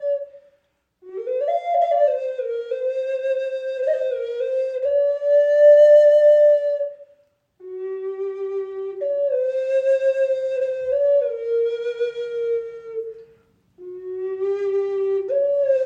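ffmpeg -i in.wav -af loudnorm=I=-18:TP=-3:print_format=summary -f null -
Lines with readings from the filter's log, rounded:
Input Integrated:    -20.1 LUFS
Input True Peak:      -5.1 dBTP
Input LRA:             8.6 LU
Input Threshold:     -31.0 LUFS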